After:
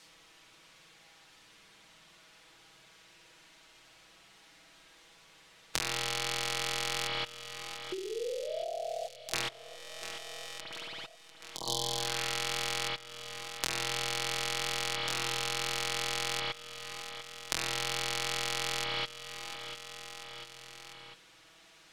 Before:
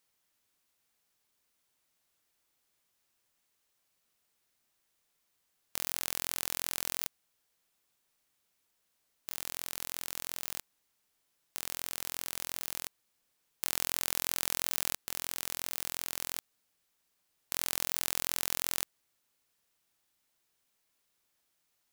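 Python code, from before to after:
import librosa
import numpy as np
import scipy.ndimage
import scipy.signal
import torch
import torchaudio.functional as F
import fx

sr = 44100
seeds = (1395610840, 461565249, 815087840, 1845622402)

y = fx.comb_fb(x, sr, f0_hz=80.0, decay_s=0.43, harmonics='all', damping=0.0, mix_pct=90, at=(9.41, 10.58), fade=0.02)
y = fx.spec_repair(y, sr, seeds[0], start_s=11.55, length_s=0.52, low_hz=1100.0, high_hz=3000.0, source='both')
y = scipy.signal.sosfilt(scipy.signal.butter(2, 4900.0, 'lowpass', fs=sr, output='sos'), y)
y = fx.spec_paint(y, sr, seeds[1], shape='rise', start_s=7.92, length_s=0.77, low_hz=370.0, high_hz=740.0, level_db=-34.0)
y = fx.rev_spring(y, sr, rt60_s=1.3, pass_ms=(55,), chirp_ms=25, drr_db=-4.5)
y = fx.level_steps(y, sr, step_db=23)
y = fx.high_shelf(y, sr, hz=3600.0, db=7.5)
y = y + 0.7 * np.pad(y, (int(6.2 * sr / 1000.0), 0))[:len(y)]
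y = fx.echo_feedback(y, sr, ms=696, feedback_pct=41, wet_db=-20.5)
y = fx.band_squash(y, sr, depth_pct=70)
y = F.gain(torch.from_numpy(y), 7.5).numpy()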